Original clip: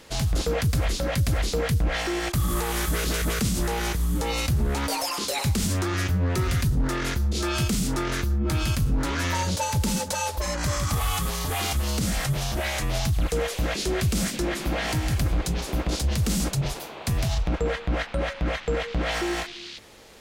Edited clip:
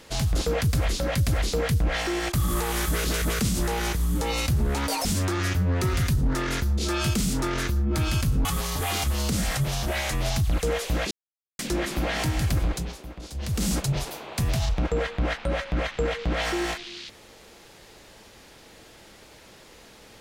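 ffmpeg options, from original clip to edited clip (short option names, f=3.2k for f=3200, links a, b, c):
-filter_complex "[0:a]asplit=7[a][b][c][d][e][f][g];[a]atrim=end=5.052[h];[b]atrim=start=5.588:end=8.992[i];[c]atrim=start=11.138:end=13.8,asetpts=PTS-STARTPTS,afade=t=out:st=2.658:d=0.004:c=hsin[j];[d]atrim=start=13.8:end=14.28,asetpts=PTS-STARTPTS,volume=0[k];[e]atrim=start=14.28:end=15.71,asetpts=PTS-STARTPTS,afade=t=in:d=0.004:c=hsin,afade=t=out:st=1.04:d=0.39:silence=0.211349[l];[f]atrim=start=15.71:end=15.99,asetpts=PTS-STARTPTS,volume=-13.5dB[m];[g]atrim=start=15.99,asetpts=PTS-STARTPTS,afade=t=in:d=0.39:silence=0.211349[n];[h][i]acrossfade=d=0.004:c1=hsin:c2=hsin[o];[j][k][l][m][n]concat=n=5:v=0:a=1[p];[o][p]acrossfade=d=0.004:c1=hsin:c2=hsin"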